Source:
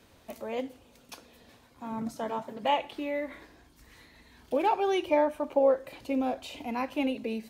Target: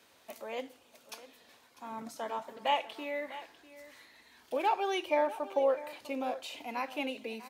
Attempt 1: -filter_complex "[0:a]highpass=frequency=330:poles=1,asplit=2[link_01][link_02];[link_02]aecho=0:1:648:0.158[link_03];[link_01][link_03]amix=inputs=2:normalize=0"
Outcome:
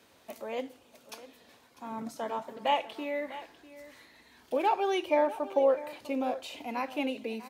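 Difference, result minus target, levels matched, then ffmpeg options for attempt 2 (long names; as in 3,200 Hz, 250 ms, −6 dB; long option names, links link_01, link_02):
250 Hz band +3.0 dB
-filter_complex "[0:a]highpass=frequency=780:poles=1,asplit=2[link_01][link_02];[link_02]aecho=0:1:648:0.158[link_03];[link_01][link_03]amix=inputs=2:normalize=0"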